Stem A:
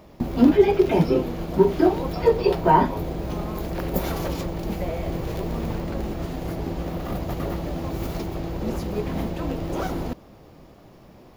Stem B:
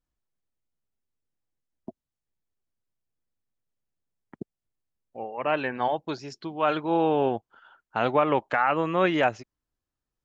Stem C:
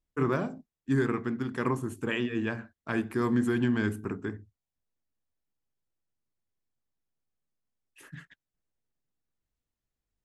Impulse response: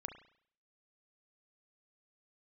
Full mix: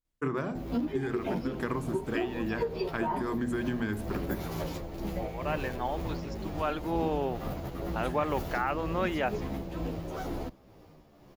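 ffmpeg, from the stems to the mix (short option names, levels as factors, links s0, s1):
-filter_complex "[0:a]tremolo=f=2.1:d=0.41,asplit=2[s0][s1];[s1]adelay=11.5,afreqshift=-1.1[s2];[s0][s2]amix=inputs=2:normalize=1,adelay=350,volume=0.708[s3];[1:a]volume=0.422[s4];[2:a]bandreject=f=60:t=h:w=6,bandreject=f=120:t=h:w=6,bandreject=f=180:t=h:w=6,bandreject=f=240:t=h:w=6,adelay=50,volume=1.12[s5];[s3][s5]amix=inputs=2:normalize=0,acompressor=threshold=0.0447:ratio=10,volume=1[s6];[s4][s6]amix=inputs=2:normalize=0"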